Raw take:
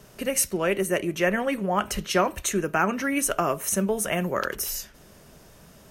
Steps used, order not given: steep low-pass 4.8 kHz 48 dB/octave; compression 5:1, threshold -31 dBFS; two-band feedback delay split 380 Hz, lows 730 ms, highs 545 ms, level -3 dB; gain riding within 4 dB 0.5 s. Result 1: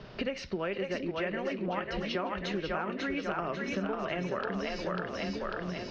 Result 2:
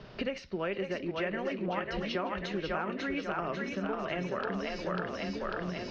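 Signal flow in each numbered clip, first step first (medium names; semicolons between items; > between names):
steep low-pass > gain riding > two-band feedback delay > compression; two-band feedback delay > gain riding > compression > steep low-pass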